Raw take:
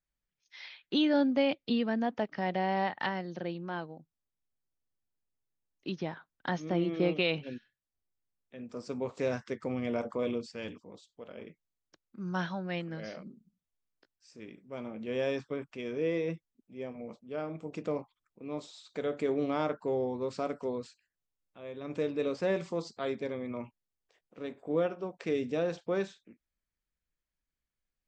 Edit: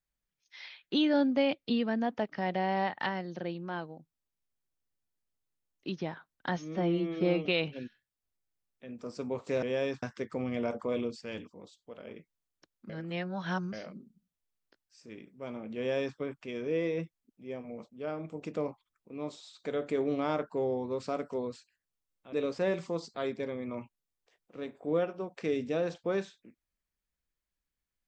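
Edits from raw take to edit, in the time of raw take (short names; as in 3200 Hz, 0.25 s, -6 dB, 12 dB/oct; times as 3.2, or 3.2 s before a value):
6.57–7.16 stretch 1.5×
12.2–13.03 reverse
15.08–15.48 copy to 9.33
21.63–22.15 cut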